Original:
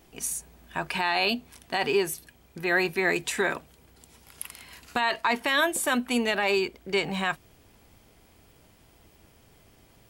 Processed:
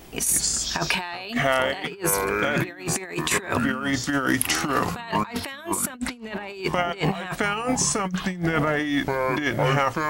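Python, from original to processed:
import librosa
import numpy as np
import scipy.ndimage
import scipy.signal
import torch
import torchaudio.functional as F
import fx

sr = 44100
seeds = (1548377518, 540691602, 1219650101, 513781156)

y = fx.bass_treble(x, sr, bass_db=9, treble_db=-7, at=(5.89, 6.5))
y = fx.echo_pitch(y, sr, ms=121, semitones=-5, count=3, db_per_echo=-6.0)
y = fx.over_compress(y, sr, threshold_db=-32.0, ratio=-0.5)
y = F.gain(torch.from_numpy(y), 7.5).numpy()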